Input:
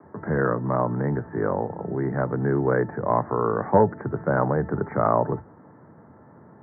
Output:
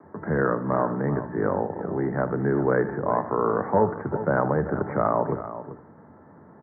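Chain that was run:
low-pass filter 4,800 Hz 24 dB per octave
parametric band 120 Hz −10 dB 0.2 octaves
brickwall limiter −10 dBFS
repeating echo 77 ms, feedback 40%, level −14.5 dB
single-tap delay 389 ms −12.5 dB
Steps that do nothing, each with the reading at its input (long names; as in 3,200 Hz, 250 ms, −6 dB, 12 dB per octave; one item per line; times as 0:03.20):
low-pass filter 4,800 Hz: nothing at its input above 1,800 Hz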